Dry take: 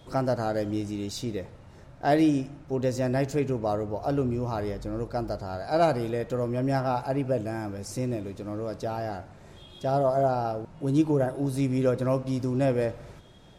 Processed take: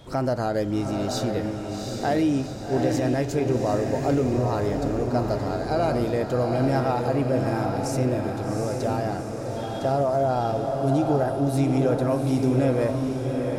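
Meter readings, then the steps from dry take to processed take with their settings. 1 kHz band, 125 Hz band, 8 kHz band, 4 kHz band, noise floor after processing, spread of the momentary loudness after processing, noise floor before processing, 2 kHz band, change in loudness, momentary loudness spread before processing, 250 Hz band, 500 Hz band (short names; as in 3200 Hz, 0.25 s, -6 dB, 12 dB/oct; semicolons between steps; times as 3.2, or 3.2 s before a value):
+3.5 dB, +4.5 dB, +5.5 dB, +4.5 dB, -32 dBFS, 6 LU, -50 dBFS, +3.5 dB, +3.5 dB, 10 LU, +4.0 dB, +3.5 dB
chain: limiter -20 dBFS, peak gain reduction 8.5 dB; diffused feedback echo 0.771 s, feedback 53%, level -4 dB; crackle 11/s -50 dBFS; gain +4 dB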